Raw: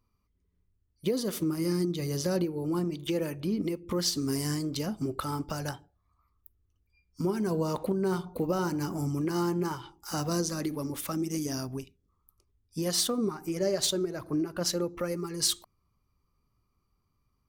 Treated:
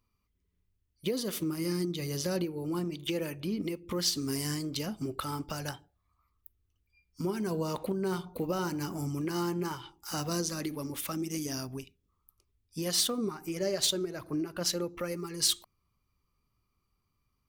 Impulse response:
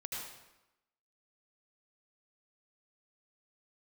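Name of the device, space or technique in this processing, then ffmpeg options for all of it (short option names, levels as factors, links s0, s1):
presence and air boost: -af "equalizer=f=2800:t=o:w=1.4:g=6,highshelf=f=9200:g=5.5,volume=0.668"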